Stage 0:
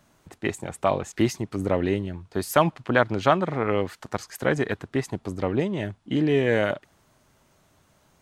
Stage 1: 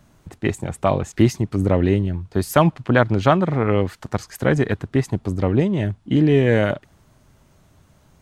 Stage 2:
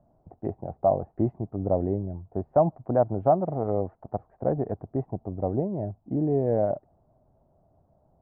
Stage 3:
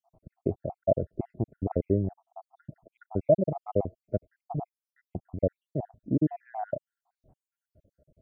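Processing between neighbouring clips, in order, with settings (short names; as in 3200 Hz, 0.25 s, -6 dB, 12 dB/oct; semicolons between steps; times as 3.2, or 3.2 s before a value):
low shelf 210 Hz +11.5 dB; gain +2 dB
ladder low-pass 780 Hz, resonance 65%
random spectral dropouts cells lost 73%; gain +3.5 dB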